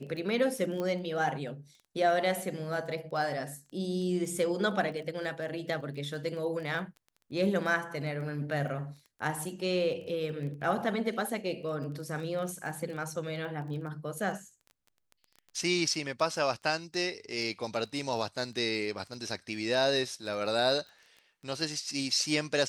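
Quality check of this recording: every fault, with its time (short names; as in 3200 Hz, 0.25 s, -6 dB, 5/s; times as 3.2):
crackle 12/s -40 dBFS
0.8 pop -22 dBFS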